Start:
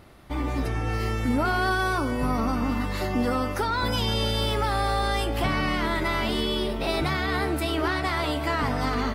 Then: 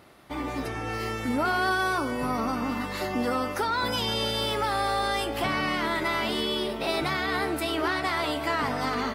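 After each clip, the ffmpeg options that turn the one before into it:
ffmpeg -i in.wav -af "highpass=frequency=260:poles=1" out.wav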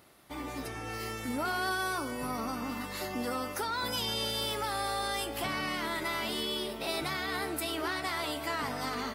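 ffmpeg -i in.wav -af "highshelf=frequency=5500:gain=11.5,volume=-7.5dB" out.wav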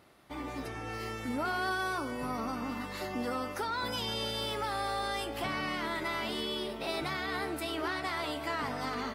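ffmpeg -i in.wav -af "lowpass=frequency=3900:poles=1" out.wav

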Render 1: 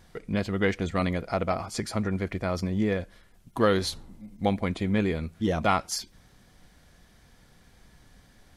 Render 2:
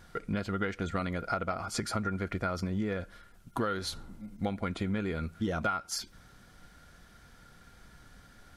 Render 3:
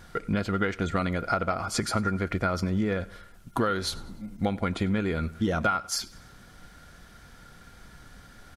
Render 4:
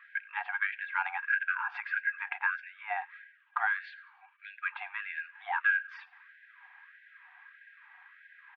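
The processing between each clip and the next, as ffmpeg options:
ffmpeg -i in.wav -af "equalizer=frequency=1400:width=8:gain=14.5,acompressor=threshold=-28dB:ratio=12" out.wav
ffmpeg -i in.wav -af "aecho=1:1:98|196|294:0.0794|0.0373|0.0175,volume=5.5dB" out.wav
ffmpeg -i in.wav -af "highpass=frequency=200:width_type=q:width=0.5412,highpass=frequency=200:width_type=q:width=1.307,lowpass=frequency=2500:width_type=q:width=0.5176,lowpass=frequency=2500:width_type=q:width=0.7071,lowpass=frequency=2500:width_type=q:width=1.932,afreqshift=230,afftfilt=real='re*gte(b*sr/1024,690*pow(1500/690,0.5+0.5*sin(2*PI*1.6*pts/sr)))':imag='im*gte(b*sr/1024,690*pow(1500/690,0.5+0.5*sin(2*PI*1.6*pts/sr)))':win_size=1024:overlap=0.75" out.wav

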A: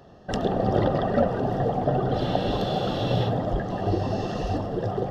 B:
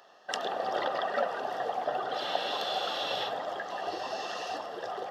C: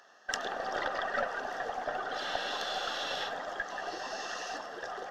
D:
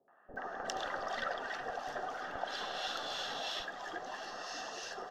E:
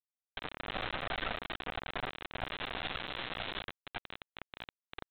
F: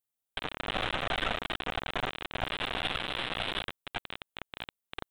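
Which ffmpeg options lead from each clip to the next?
ffmpeg -i in.wav -af "highpass=970,volume=2dB" out.wav
ffmpeg -i in.wav -af "equalizer=frequency=250:width_type=o:width=0.67:gain=4,equalizer=frequency=1600:width_type=o:width=0.67:gain=10,equalizer=frequency=6300:width_type=o:width=0.67:gain=10,aeval=exprs='0.355*(cos(1*acos(clip(val(0)/0.355,-1,1)))-cos(1*PI/2))+0.0126*(cos(6*acos(clip(val(0)/0.355,-1,1)))-cos(6*PI/2))':channel_layout=same,volume=-5.5dB" out.wav
ffmpeg -i in.wav -filter_complex "[0:a]acrossover=split=1100[link_01][link_02];[link_01]aeval=exprs='val(0)*(1-0.5/2+0.5/2*cos(2*PI*3*n/s))':channel_layout=same[link_03];[link_02]aeval=exprs='val(0)*(1-0.5/2-0.5/2*cos(2*PI*3*n/s))':channel_layout=same[link_04];[link_03][link_04]amix=inputs=2:normalize=0,acrossover=split=520|1800[link_05][link_06][link_07];[link_06]adelay=80[link_08];[link_07]adelay=360[link_09];[link_05][link_08][link_09]amix=inputs=3:normalize=0" out.wav
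ffmpeg -i in.wav -af "aeval=exprs='val(0)+0.00224*(sin(2*PI*60*n/s)+sin(2*PI*2*60*n/s)/2+sin(2*PI*3*60*n/s)/3+sin(2*PI*4*60*n/s)/4+sin(2*PI*5*60*n/s)/5)':channel_layout=same,aresample=8000,acrusher=bits=3:dc=4:mix=0:aa=0.000001,aresample=44100,volume=3dB" out.wav
ffmpeg -i in.wav -filter_complex "[0:a]aexciter=amount=1.8:drive=3.7:freq=2800,asplit=2[link_01][link_02];[link_02]adynamicsmooth=sensitivity=4.5:basefreq=1900,volume=-1dB[link_03];[link_01][link_03]amix=inputs=2:normalize=0" out.wav

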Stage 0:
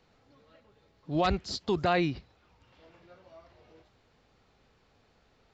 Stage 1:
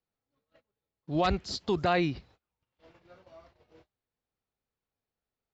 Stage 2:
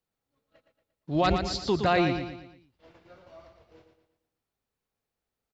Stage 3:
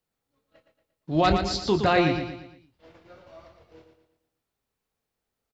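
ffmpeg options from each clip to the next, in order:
ffmpeg -i in.wav -af "agate=range=-26dB:threshold=-57dB:ratio=16:detection=peak" out.wav
ffmpeg -i in.wav -af "aecho=1:1:116|232|348|464|580:0.447|0.192|0.0826|0.0355|0.0153,volume=2.5dB" out.wav
ffmpeg -i in.wav -filter_complex "[0:a]asplit=2[link_01][link_02];[link_02]adelay=25,volume=-9dB[link_03];[link_01][link_03]amix=inputs=2:normalize=0,volume=2.5dB" out.wav

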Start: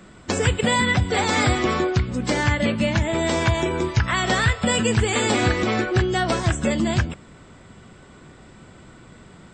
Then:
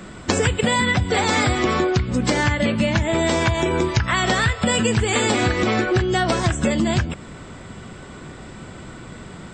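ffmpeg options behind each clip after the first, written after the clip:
ffmpeg -i in.wav -af "acompressor=threshold=-25dB:ratio=5,volume=8.5dB" out.wav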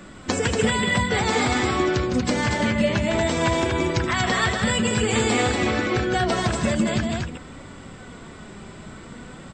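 ffmpeg -i in.wav -filter_complex "[0:a]asplit=2[link_01][link_02];[link_02]aecho=0:1:157.4|236.2:0.447|0.631[link_03];[link_01][link_03]amix=inputs=2:normalize=0,flanger=delay=3.4:depth=1.7:regen=62:speed=0.52:shape=triangular" out.wav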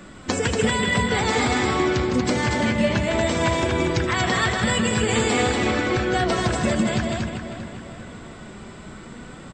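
ffmpeg -i in.wav -filter_complex "[0:a]asplit=2[link_01][link_02];[link_02]adelay=396,lowpass=frequency=4200:poles=1,volume=-9.5dB,asplit=2[link_03][link_04];[link_04]adelay=396,lowpass=frequency=4200:poles=1,volume=0.47,asplit=2[link_05][link_06];[link_06]adelay=396,lowpass=frequency=4200:poles=1,volume=0.47,asplit=2[link_07][link_08];[link_08]adelay=396,lowpass=frequency=4200:poles=1,volume=0.47,asplit=2[link_09][link_10];[link_10]adelay=396,lowpass=frequency=4200:poles=1,volume=0.47[link_11];[link_01][link_03][link_05][link_07][link_09][link_11]amix=inputs=6:normalize=0" out.wav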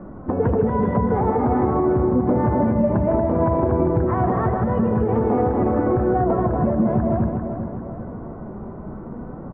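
ffmpeg -i in.wav -af "lowpass=frequency=1000:width=0.5412,lowpass=frequency=1000:width=1.3066,alimiter=limit=-16.5dB:level=0:latency=1:release=166,volume=6.5dB" out.wav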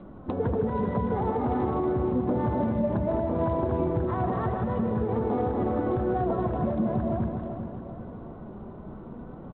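ffmpeg -i in.wav -filter_complex "[0:a]asplit=2[link_01][link_02];[link_02]adelay=320,highpass=300,lowpass=3400,asoftclip=type=hard:threshold=-19dB,volume=-15dB[link_03];[link_01][link_03]amix=inputs=2:normalize=0,volume=-7.5dB" -ar 8000 -c:a adpcm_g726 -b:a 32k out.wav

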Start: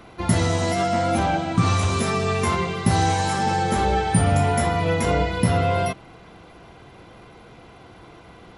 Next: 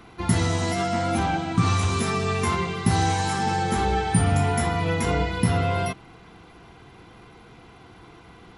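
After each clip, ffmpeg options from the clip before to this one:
ffmpeg -i in.wav -af "equalizer=frequency=580:width=5.3:gain=-12,volume=-1.5dB" out.wav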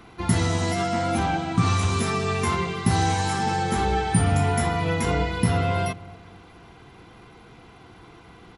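ffmpeg -i in.wav -filter_complex "[0:a]asplit=2[link_01][link_02];[link_02]adelay=253,lowpass=frequency=880:poles=1,volume=-19.5dB,asplit=2[link_03][link_04];[link_04]adelay=253,lowpass=frequency=880:poles=1,volume=0.44,asplit=2[link_05][link_06];[link_06]adelay=253,lowpass=frequency=880:poles=1,volume=0.44[link_07];[link_01][link_03][link_05][link_07]amix=inputs=4:normalize=0" out.wav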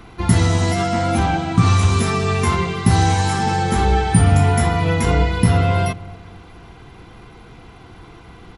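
ffmpeg -i in.wav -af "lowshelf=frequency=70:gain=11.5,volume=4.5dB" out.wav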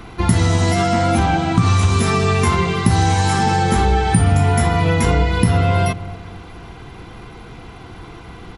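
ffmpeg -i in.wav -af "acompressor=threshold=-18dB:ratio=2.5,volume=5dB" out.wav

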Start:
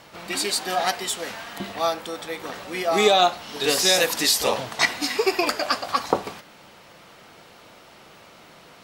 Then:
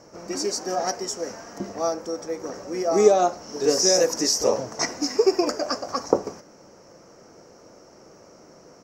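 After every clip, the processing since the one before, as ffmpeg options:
ffmpeg -i in.wav -af "firequalizer=gain_entry='entry(160,0);entry(310,5);entry(530,5);entry(760,-3);entry(1400,-6);entry(3600,-23);entry(5600,8);entry(8900,-14)':delay=0.05:min_phase=1,volume=-1dB" out.wav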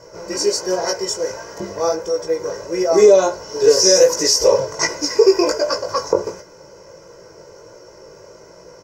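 ffmpeg -i in.wav -af "flanger=delay=16.5:depth=4.4:speed=1.4,aecho=1:1:2:0.86,alimiter=level_in=8.5dB:limit=-1dB:release=50:level=0:latency=1,volume=-1dB" out.wav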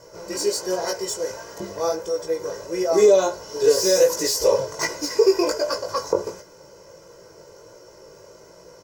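ffmpeg -i in.wav -af "aexciter=amount=1.1:drive=7.9:freq=3100,volume=-4.5dB" out.wav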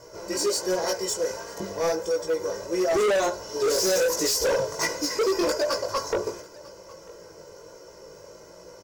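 ffmpeg -i in.wav -af "flanger=delay=2.8:depth=1.5:regen=-71:speed=0.32:shape=triangular,volume=24.5dB,asoftclip=hard,volume=-24.5dB,aecho=1:1:946:0.0708,volume=4.5dB" out.wav

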